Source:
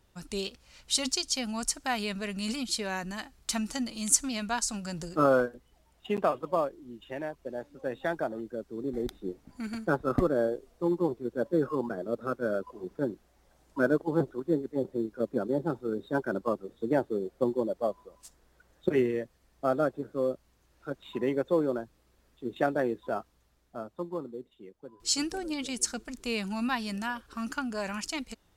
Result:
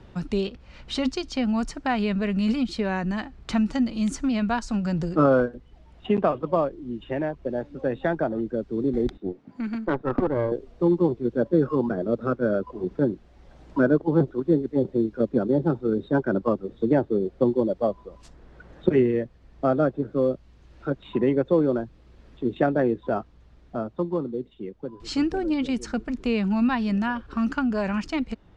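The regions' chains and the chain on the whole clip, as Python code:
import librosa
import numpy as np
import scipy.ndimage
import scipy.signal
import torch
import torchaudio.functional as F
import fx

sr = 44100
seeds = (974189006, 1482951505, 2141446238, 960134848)

y = fx.chain(x, sr, fx.highpass(hz=180.0, slope=12),
    fx.high_shelf(hz=6900.0, db=-6.5),
    fx.tube_stage(drive_db=21.0, bias=0.8), at=(9.17, 10.52))
y = scipy.signal.sosfilt(scipy.signal.butter(2, 3400.0, 'lowpass', fs=sr, output='sos'), y)
y = fx.low_shelf(y, sr, hz=380.0, db=10.0)
y = fx.band_squash(y, sr, depth_pct=40)
y = F.gain(torch.from_numpy(y), 2.5).numpy()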